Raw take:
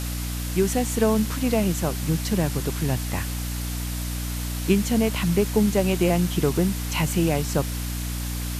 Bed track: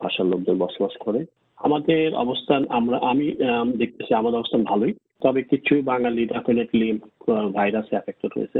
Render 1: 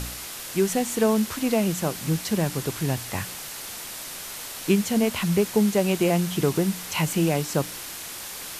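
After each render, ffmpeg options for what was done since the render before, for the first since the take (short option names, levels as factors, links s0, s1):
-af "bandreject=f=60:t=h:w=4,bandreject=f=120:t=h:w=4,bandreject=f=180:t=h:w=4,bandreject=f=240:t=h:w=4,bandreject=f=300:t=h:w=4"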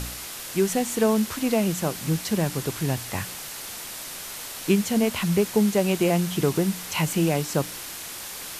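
-af anull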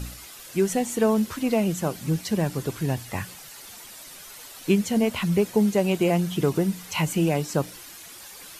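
-af "afftdn=nr=10:nf=-37"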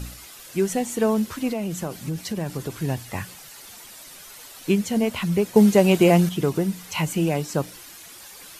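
-filter_complex "[0:a]asettb=1/sr,asplit=3[s0][s1][s2];[s0]atrim=end=1.494[s3];[s1]atrim=start=1.49:end=2.71,asetpts=PTS-STARTPTS,afade=t=in:d=0.004:c=qsin,afade=t=out:st=1.216:d=0.004:c=qsin,acompressor=threshold=0.0708:ratio=6:attack=3.2:release=140:knee=1:detection=peak[s4];[s2]atrim=start=2.706[s5];[s3][s4]acrossfade=d=0.004:c1=hsin:c2=qsin[s6];[s6][s5]acrossfade=d=0.004:c1=qsin:c2=hsin,asplit=3[s7][s8][s9];[s7]atrim=end=5.562[s10];[s8]atrim=start=5.558:end=6.292,asetpts=PTS-STARTPTS,volume=2[s11];[s9]atrim=start=6.288[s12];[s10][s11]acrossfade=d=0.004:c1=hsin:c2=hsin[s13];[s13][s12]acrossfade=d=0.004:c1=hsin:c2=hsin"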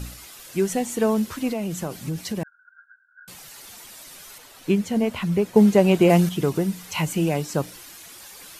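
-filter_complex "[0:a]asettb=1/sr,asplit=3[s0][s1][s2];[s0]atrim=end=2.434[s3];[s1]atrim=start=2.43:end=3.28,asetpts=PTS-STARTPTS,afade=t=in:d=0.004:c=qsin,afade=t=out:st=0.846:d=0.004:c=qsin,asuperpass=centerf=1500:order=12:qfactor=6.4[s4];[s2]atrim=start=3.276[s5];[s3][s4]acrossfade=d=0.004:c1=hsin:c2=qsin[s6];[s6][s5]acrossfade=d=0.004:c1=qsin:c2=hsin,asettb=1/sr,asplit=3[s7][s8][s9];[s7]atrim=end=4.384[s10];[s8]atrim=start=4.38:end=6.1,asetpts=PTS-STARTPTS,afade=t=in:d=0.004:c=qsin,afade=t=out:st=1.716:d=0.004:c=qsin,highshelf=f=3400:g=-7[s11];[s9]atrim=start=6.096[s12];[s10][s11]acrossfade=d=0.004:c1=hsin:c2=qsin[s13];[s13][s12]acrossfade=d=0.004:c1=qsin:c2=hsin"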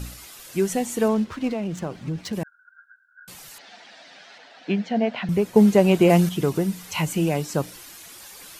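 -filter_complex "[0:a]asettb=1/sr,asplit=3[s0][s1][s2];[s0]atrim=end=1.084[s3];[s1]atrim=start=1.08:end=2.33,asetpts=PTS-STARTPTS,afade=t=in:d=0.004:c=qsin,afade=t=out:st=1.246:d=0.004:c=qsin,adynamicsmooth=sensitivity=8:basefreq=2400[s4];[s2]atrim=start=2.326[s5];[s3][s4]acrossfade=d=0.004:c1=hsin:c2=qsin[s6];[s6][s5]acrossfade=d=0.004:c1=qsin:c2=hsin,asettb=1/sr,asplit=3[s7][s8][s9];[s7]atrim=end=3.584[s10];[s8]atrim=start=3.58:end=5.29,asetpts=PTS-STARTPTS,afade=t=in:d=0.004:c=qsin,afade=t=out:st=1.706:d=0.004:c=qsin,highpass=f=190:w=0.5412,highpass=f=190:w=1.3066,equalizer=f=370:t=q:w=4:g=-7,equalizer=f=710:t=q:w=4:g=9,equalizer=f=1100:t=q:w=4:g=-6,equalizer=f=1700:t=q:w=4:g=6,lowpass=f=4700:w=0.5412,lowpass=f=4700:w=1.3066[s11];[s9]atrim=start=5.286[s12];[s10][s11]acrossfade=d=0.004:c1=hsin:c2=qsin[s13];[s13][s12]acrossfade=d=0.004:c1=qsin:c2=hsin"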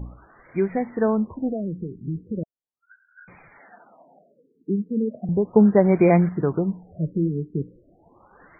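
-af "afftfilt=real='re*lt(b*sr/1024,450*pow(2500/450,0.5+0.5*sin(2*PI*0.37*pts/sr)))':imag='im*lt(b*sr/1024,450*pow(2500/450,0.5+0.5*sin(2*PI*0.37*pts/sr)))':win_size=1024:overlap=0.75"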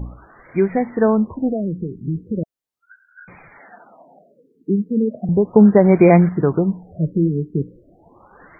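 -af "volume=1.88,alimiter=limit=0.891:level=0:latency=1"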